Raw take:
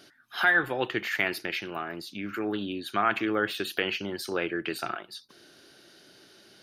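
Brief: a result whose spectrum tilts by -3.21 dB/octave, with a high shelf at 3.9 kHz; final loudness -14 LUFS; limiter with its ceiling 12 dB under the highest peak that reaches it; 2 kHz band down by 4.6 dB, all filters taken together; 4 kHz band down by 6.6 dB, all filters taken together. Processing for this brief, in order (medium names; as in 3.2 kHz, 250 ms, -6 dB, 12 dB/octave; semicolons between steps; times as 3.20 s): peaking EQ 2 kHz -4 dB; treble shelf 3.9 kHz -6.5 dB; peaking EQ 4 kHz -3.5 dB; trim +22 dB; peak limiter -2.5 dBFS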